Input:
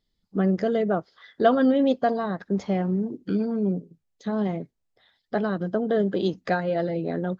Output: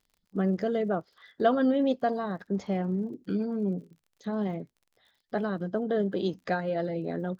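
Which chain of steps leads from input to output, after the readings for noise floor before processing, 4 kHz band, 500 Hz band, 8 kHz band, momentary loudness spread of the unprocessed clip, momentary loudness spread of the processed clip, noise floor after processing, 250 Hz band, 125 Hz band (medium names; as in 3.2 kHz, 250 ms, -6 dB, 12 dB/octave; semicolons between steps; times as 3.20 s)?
-77 dBFS, -4.5 dB, -4.5 dB, no reading, 9 LU, 9 LU, -77 dBFS, -4.5 dB, -4.5 dB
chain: crackle 46 per s -46 dBFS; trim -4.5 dB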